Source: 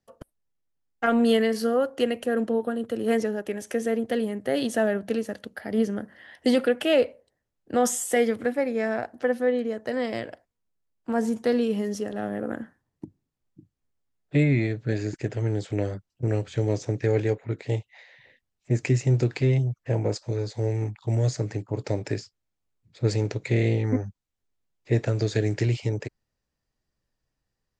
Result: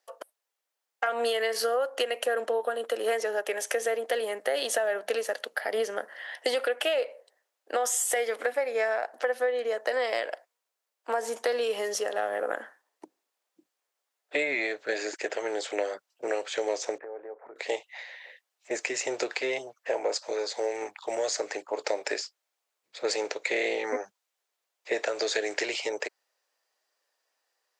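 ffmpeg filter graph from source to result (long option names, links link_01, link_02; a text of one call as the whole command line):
ffmpeg -i in.wav -filter_complex "[0:a]asettb=1/sr,asplit=3[link_01][link_02][link_03];[link_01]atrim=end=16.984[link_04];[link_02]atrim=start=16.98:end=17.56,asetpts=PTS-STARTPTS,afade=type=in:duration=0.004:curve=qsin,afade=type=out:start_time=0.576:duration=0.004:curve=qsin,lowpass=frequency=1300:width=0.5412,lowpass=frequency=1300:width=1.3066,acompressor=threshold=-38dB:ratio=5:attack=3.2:release=140:knee=1:detection=peak[link_05];[link_03]atrim=start=17.556[link_06];[link_04][link_05]acrossfade=duration=0.004:curve1=hsin:curve2=qsin[link_07];[link_07][link_06]acrossfade=duration=0.004:curve1=qsin:curve2=hsin,highpass=frequency=520:width=0.5412,highpass=frequency=520:width=1.3066,alimiter=limit=-20.5dB:level=0:latency=1:release=189,acompressor=threshold=-33dB:ratio=4,volume=8.5dB" out.wav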